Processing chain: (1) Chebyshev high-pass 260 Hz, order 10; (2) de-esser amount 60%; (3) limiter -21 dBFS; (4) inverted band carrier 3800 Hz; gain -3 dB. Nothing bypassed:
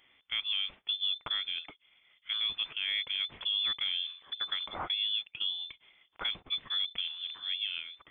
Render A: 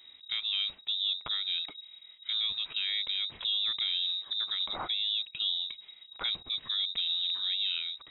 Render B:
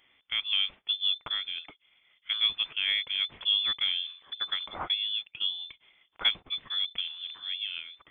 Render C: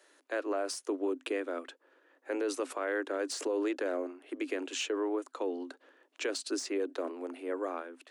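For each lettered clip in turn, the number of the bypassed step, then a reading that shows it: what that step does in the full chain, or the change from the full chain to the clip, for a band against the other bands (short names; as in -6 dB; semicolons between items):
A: 1, 4 kHz band +3.0 dB; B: 3, crest factor change +6.0 dB; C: 4, 4 kHz band -30.5 dB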